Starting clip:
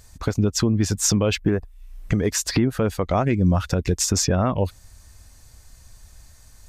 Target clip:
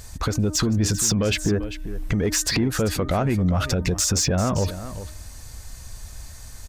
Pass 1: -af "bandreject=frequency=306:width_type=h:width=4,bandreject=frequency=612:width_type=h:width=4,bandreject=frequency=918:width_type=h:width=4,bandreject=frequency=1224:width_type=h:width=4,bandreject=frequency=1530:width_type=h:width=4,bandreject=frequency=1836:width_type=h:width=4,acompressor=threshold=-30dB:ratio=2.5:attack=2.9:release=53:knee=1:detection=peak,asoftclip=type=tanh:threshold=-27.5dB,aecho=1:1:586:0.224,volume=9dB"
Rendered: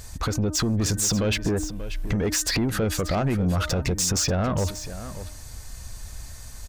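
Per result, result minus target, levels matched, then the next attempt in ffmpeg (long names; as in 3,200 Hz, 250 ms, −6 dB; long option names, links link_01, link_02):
echo 192 ms late; soft clipping: distortion +8 dB
-af "bandreject=frequency=306:width_type=h:width=4,bandreject=frequency=612:width_type=h:width=4,bandreject=frequency=918:width_type=h:width=4,bandreject=frequency=1224:width_type=h:width=4,bandreject=frequency=1530:width_type=h:width=4,bandreject=frequency=1836:width_type=h:width=4,acompressor=threshold=-30dB:ratio=2.5:attack=2.9:release=53:knee=1:detection=peak,asoftclip=type=tanh:threshold=-27.5dB,aecho=1:1:394:0.224,volume=9dB"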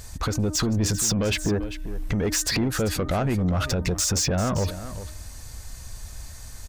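soft clipping: distortion +8 dB
-af "bandreject=frequency=306:width_type=h:width=4,bandreject=frequency=612:width_type=h:width=4,bandreject=frequency=918:width_type=h:width=4,bandreject=frequency=1224:width_type=h:width=4,bandreject=frequency=1530:width_type=h:width=4,bandreject=frequency=1836:width_type=h:width=4,acompressor=threshold=-30dB:ratio=2.5:attack=2.9:release=53:knee=1:detection=peak,asoftclip=type=tanh:threshold=-21.5dB,aecho=1:1:394:0.224,volume=9dB"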